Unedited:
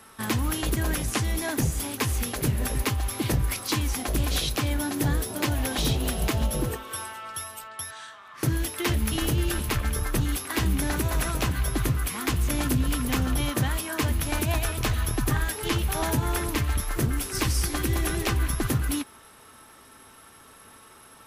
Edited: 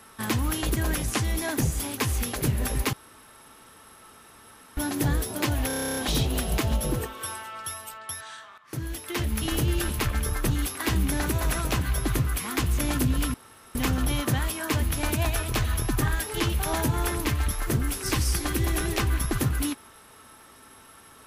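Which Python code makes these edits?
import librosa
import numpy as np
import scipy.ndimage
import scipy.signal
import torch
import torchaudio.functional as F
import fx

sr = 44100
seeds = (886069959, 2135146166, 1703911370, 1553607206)

y = fx.edit(x, sr, fx.room_tone_fill(start_s=2.93, length_s=1.84),
    fx.stutter(start_s=5.67, slice_s=0.03, count=11),
    fx.fade_in_from(start_s=8.28, length_s=1.05, floor_db=-12.0),
    fx.insert_room_tone(at_s=13.04, length_s=0.41), tone=tone)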